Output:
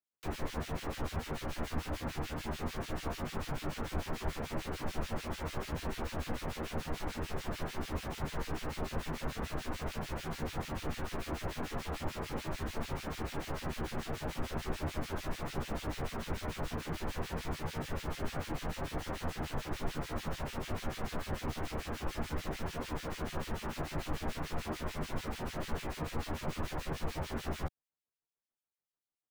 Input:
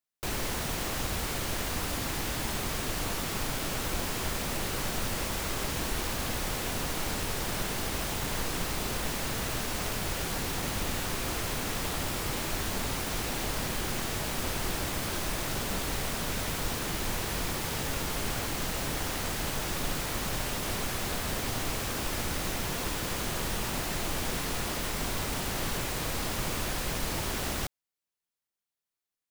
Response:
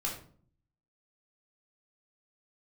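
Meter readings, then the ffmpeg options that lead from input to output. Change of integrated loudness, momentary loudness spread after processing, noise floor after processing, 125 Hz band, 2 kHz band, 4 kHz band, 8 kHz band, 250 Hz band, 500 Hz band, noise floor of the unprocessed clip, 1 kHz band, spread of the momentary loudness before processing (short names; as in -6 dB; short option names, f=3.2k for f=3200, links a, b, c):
-8.0 dB, 1 LU, under -85 dBFS, -3.5 dB, -9.0 dB, -11.5 dB, -16.0 dB, -4.0 dB, -4.0 dB, under -85 dBFS, -5.5 dB, 0 LU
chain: -filter_complex "[0:a]asplit=2[a][b];[b]adelay=13,volume=-3.5dB[c];[a][c]amix=inputs=2:normalize=0,acrossover=split=1800[d][e];[d]aeval=exprs='val(0)*(1-1/2+1/2*cos(2*PI*6.8*n/s))':c=same[f];[e]aeval=exprs='val(0)*(1-1/2-1/2*cos(2*PI*6.8*n/s))':c=same[g];[f][g]amix=inputs=2:normalize=0,highshelf=f=2.5k:g=-10.5,acrossover=split=120|1100|6300[h][i][j][k];[k]alimiter=level_in=22.5dB:limit=-24dB:level=0:latency=1:release=25,volume=-22.5dB[l];[h][i][j][l]amix=inputs=4:normalize=0,volume=-1dB"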